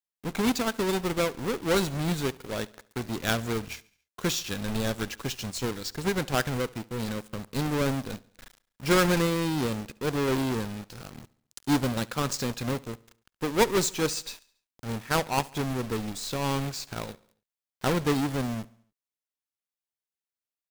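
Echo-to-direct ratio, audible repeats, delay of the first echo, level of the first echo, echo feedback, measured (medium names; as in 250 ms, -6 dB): -21.0 dB, 3, 70 ms, -22.5 dB, 53%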